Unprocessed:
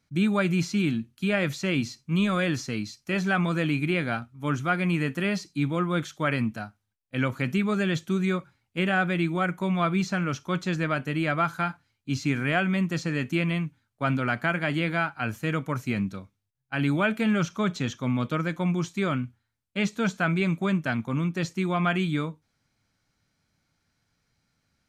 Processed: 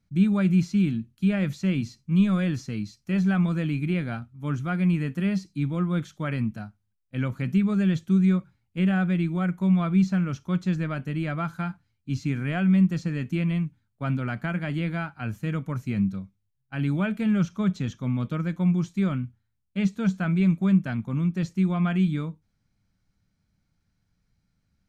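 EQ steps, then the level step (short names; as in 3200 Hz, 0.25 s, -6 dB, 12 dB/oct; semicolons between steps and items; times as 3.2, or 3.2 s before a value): low shelf 60 Hz +9.5 dB; bell 190 Hz +8 dB 0.22 oct; low shelf 240 Hz +9.5 dB; -7.5 dB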